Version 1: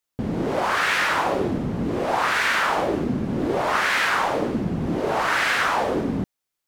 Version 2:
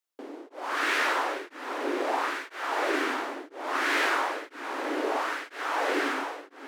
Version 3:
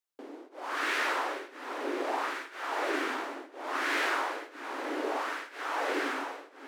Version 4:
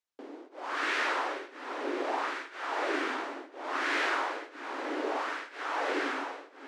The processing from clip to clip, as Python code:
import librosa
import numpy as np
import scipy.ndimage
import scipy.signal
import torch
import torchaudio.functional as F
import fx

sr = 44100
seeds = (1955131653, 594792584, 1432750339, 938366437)

y1 = scipy.signal.sosfilt(scipy.signal.cheby1(6, 1.0, 280.0, 'highpass', fs=sr, output='sos'), x)
y1 = fx.echo_diffused(y1, sr, ms=498, feedback_pct=43, wet_db=-4.5)
y1 = y1 * np.abs(np.cos(np.pi * 1.0 * np.arange(len(y1)) / sr))
y1 = y1 * librosa.db_to_amplitude(-4.5)
y2 = y1 + 10.0 ** (-14.0 / 20.0) * np.pad(y1, (int(126 * sr / 1000.0), 0))[:len(y1)]
y2 = y2 * librosa.db_to_amplitude(-4.0)
y3 = scipy.signal.sosfilt(scipy.signal.butter(2, 7000.0, 'lowpass', fs=sr, output='sos'), y2)